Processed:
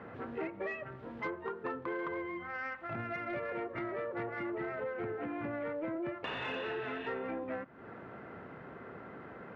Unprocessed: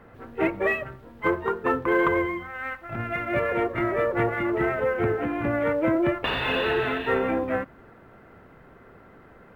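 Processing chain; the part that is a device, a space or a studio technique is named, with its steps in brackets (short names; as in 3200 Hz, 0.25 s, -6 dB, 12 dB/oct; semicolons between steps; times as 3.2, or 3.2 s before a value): AM radio (BPF 120–3300 Hz; compressor 5:1, threshold -40 dBFS, peak gain reduction 19 dB; soft clip -29.5 dBFS, distortion -26 dB); gain +3 dB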